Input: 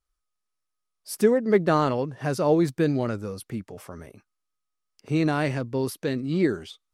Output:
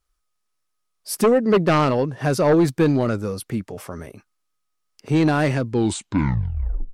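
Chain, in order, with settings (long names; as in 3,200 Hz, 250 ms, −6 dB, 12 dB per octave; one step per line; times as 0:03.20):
turntable brake at the end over 1.30 s
sine wavefolder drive 6 dB, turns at −8 dBFS
level −3 dB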